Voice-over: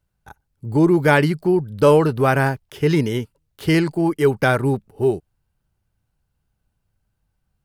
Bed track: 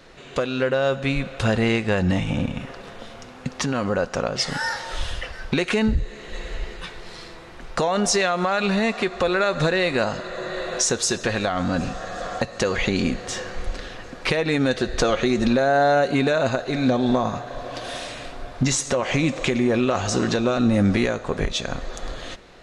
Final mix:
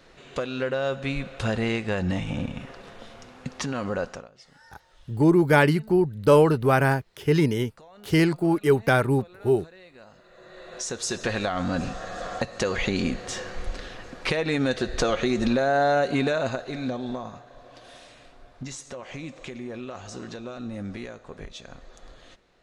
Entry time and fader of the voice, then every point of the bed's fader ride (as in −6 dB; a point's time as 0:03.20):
4.45 s, −3.0 dB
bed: 0:04.10 −5.5 dB
0:04.31 −28.5 dB
0:09.95 −28.5 dB
0:11.24 −3.5 dB
0:16.25 −3.5 dB
0:17.52 −16 dB